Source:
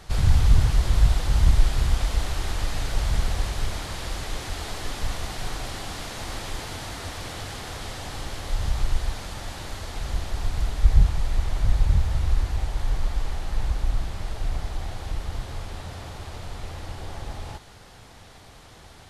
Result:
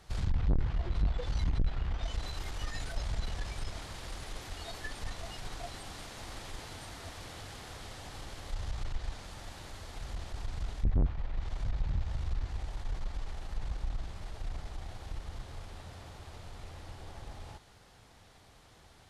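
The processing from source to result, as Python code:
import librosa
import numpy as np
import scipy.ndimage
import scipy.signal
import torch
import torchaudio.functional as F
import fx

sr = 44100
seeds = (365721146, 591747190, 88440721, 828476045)

y = fx.noise_reduce_blind(x, sr, reduce_db=18)
y = fx.env_lowpass_down(y, sr, base_hz=2700.0, full_db=-28.0)
y = fx.tube_stage(y, sr, drive_db=32.0, bias=0.45)
y = y * librosa.db_to_amplitude(9.0)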